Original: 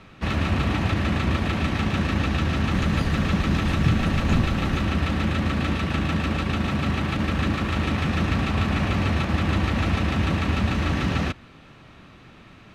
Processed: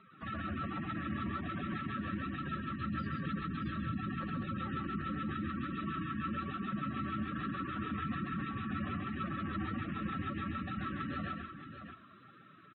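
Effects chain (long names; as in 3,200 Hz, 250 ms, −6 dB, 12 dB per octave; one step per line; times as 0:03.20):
phase distortion by the signal itself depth 0.081 ms
meter weighting curve D
gate on every frequency bin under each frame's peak −10 dB strong
high shelf with overshoot 1,800 Hz −10 dB, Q 3
brickwall limiter −21.5 dBFS, peak gain reduction 8.5 dB
flanger 1.2 Hz, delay 4.7 ms, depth 5.3 ms, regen −29%
multi-tap delay 133/622 ms −4.5/−9 dB
level −6.5 dB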